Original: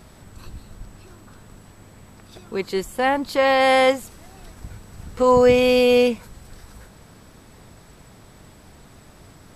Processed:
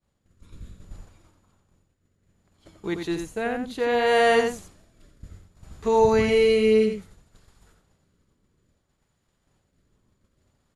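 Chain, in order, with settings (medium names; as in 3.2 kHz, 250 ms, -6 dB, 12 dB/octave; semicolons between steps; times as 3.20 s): rotary cabinet horn 0.7 Hz; expander -36 dBFS; wide varispeed 0.888×; echo from a far wall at 15 m, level -6 dB; trim -3 dB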